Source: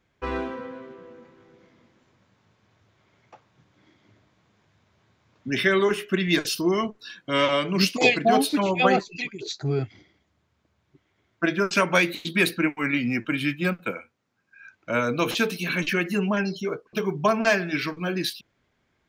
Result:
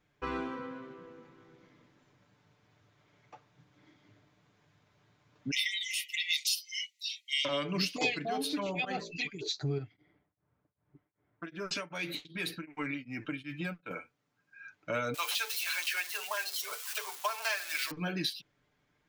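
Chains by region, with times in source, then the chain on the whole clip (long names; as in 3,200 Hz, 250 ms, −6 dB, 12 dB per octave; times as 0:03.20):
0:05.51–0:07.45: linear-phase brick-wall high-pass 1,900 Hz + parametric band 12,000 Hz +11.5 dB 2.4 octaves
0:08.24–0:09.11: hum removal 56.24 Hz, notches 11 + volume swells 125 ms + downward compressor 2 to 1, threshold −26 dBFS
0:09.78–0:13.91: low-pass that shuts in the quiet parts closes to 1,400 Hz, open at −20.5 dBFS + downward compressor 3 to 1, threshold −29 dBFS + tremolo along a rectified sine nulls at 2.6 Hz
0:15.14–0:17.91: spike at every zero crossing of −22.5 dBFS + high-pass filter 710 Hz 24 dB per octave
whole clip: comb filter 6.8 ms, depth 53%; dynamic equaliser 4,000 Hz, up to +5 dB, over −38 dBFS, Q 1; downward compressor 2.5 to 1, threshold −28 dBFS; level −4.5 dB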